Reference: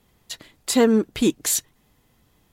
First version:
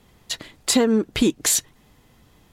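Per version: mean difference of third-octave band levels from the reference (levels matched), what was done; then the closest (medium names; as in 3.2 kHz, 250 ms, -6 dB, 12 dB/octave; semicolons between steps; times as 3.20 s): 3.5 dB: treble shelf 12 kHz -9.5 dB; compression 6:1, threshold -22 dBFS, peak gain reduction 10.5 dB; trim +7 dB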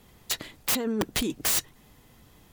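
11.0 dB: compressor with a negative ratio -25 dBFS, ratio -1; integer overflow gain 18 dB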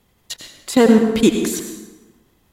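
7.0 dB: level held to a coarse grid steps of 17 dB; plate-style reverb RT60 1.2 s, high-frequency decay 0.65×, pre-delay 75 ms, DRR 4.5 dB; trim +7 dB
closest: first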